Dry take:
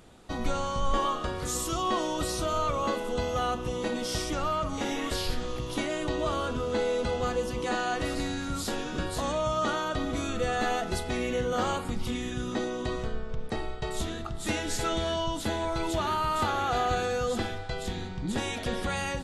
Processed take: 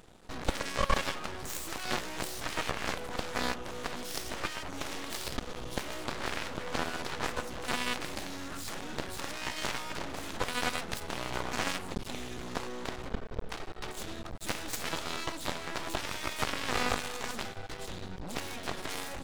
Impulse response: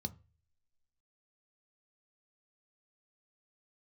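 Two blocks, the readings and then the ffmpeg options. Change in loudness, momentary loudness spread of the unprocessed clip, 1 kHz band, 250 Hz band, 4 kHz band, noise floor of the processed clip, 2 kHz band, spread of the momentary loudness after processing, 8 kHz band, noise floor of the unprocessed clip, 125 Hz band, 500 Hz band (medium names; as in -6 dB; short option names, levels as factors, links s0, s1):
-5.5 dB, 6 LU, -7.0 dB, -8.5 dB, -1.5 dB, -43 dBFS, -1.0 dB, 8 LU, -2.5 dB, -36 dBFS, -8.0 dB, -9.5 dB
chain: -af "aeval=exprs='0.188*(cos(1*acos(clip(val(0)/0.188,-1,1)))-cos(1*PI/2))+0.0596*(cos(7*acos(clip(val(0)/0.188,-1,1)))-cos(7*PI/2))':c=same,aeval=exprs='max(val(0),0)':c=same"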